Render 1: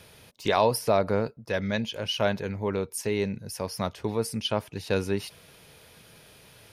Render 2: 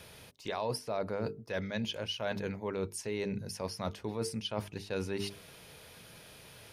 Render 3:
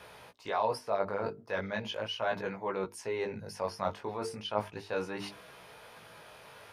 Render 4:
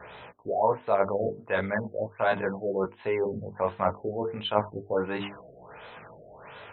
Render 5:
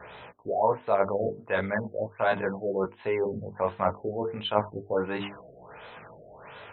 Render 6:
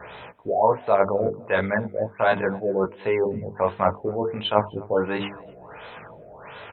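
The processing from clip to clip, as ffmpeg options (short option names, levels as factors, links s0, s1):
-filter_complex "[0:a]acrossover=split=9900[s0][s1];[s1]acompressor=threshold=0.00112:ratio=4:attack=1:release=60[s2];[s0][s2]amix=inputs=2:normalize=0,bandreject=f=50:t=h:w=6,bandreject=f=100:t=h:w=6,bandreject=f=150:t=h:w=6,bandreject=f=200:t=h:w=6,bandreject=f=250:t=h:w=6,bandreject=f=300:t=h:w=6,bandreject=f=350:t=h:w=6,bandreject=f=400:t=h:w=6,bandreject=f=450:t=h:w=6,areverse,acompressor=threshold=0.0251:ratio=6,areverse"
-af "flanger=delay=16:depth=4.8:speed=0.37,equalizer=f=1000:t=o:w=2.5:g=14.5,volume=0.668"
-af "afftfilt=real='re*lt(b*sr/1024,710*pow(4200/710,0.5+0.5*sin(2*PI*1.4*pts/sr)))':imag='im*lt(b*sr/1024,710*pow(4200/710,0.5+0.5*sin(2*PI*1.4*pts/sr)))':win_size=1024:overlap=0.75,volume=2.24"
-af anull
-filter_complex "[0:a]asplit=2[s0][s1];[s1]adelay=255,lowpass=f=1900:p=1,volume=0.0708,asplit=2[s2][s3];[s3]adelay=255,lowpass=f=1900:p=1,volume=0.35[s4];[s0][s2][s4]amix=inputs=3:normalize=0,volume=1.78"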